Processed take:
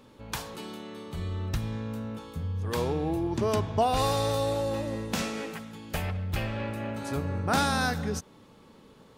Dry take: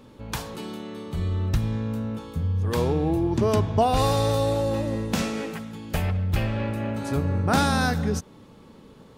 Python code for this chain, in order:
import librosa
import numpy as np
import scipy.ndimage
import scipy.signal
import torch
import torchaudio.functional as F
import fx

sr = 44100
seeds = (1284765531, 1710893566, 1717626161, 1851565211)

y = fx.low_shelf(x, sr, hz=430.0, db=-5.5)
y = y * librosa.db_to_amplitude(-2.0)